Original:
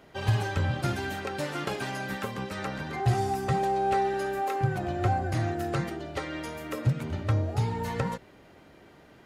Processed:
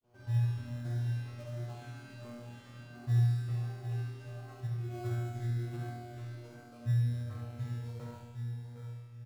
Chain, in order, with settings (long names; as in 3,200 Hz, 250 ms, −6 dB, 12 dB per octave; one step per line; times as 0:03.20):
low-pass filter 9,500 Hz
on a send: repeating echo 768 ms, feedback 26%, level −9.5 dB
on the sum: granular cloud, spray 15 ms, pitch spread up and down by 0 semitones
low-shelf EQ 250 Hz +6.5 dB
tuned comb filter 120 Hz, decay 1.5 s, mix 100%
auto-filter notch sine 1.4 Hz 670–3,000 Hz
in parallel at −6 dB: decimation without filtering 24×
on the sum: flutter between parallel walls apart 11.7 metres, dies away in 0.74 s